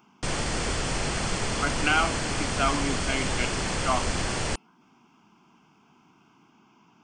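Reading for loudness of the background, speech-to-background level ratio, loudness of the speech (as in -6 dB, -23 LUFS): -28.5 LUFS, -0.5 dB, -29.0 LUFS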